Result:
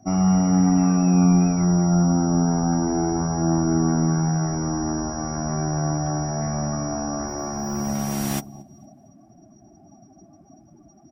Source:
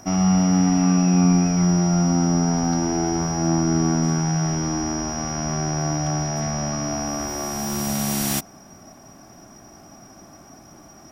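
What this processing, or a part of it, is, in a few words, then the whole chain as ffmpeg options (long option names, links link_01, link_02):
behind a face mask: -af "highshelf=frequency=2700:gain=-6,aecho=1:1:229|458|687|916:0.158|0.0666|0.028|0.0117,afftdn=noise_reduction=21:noise_floor=-39"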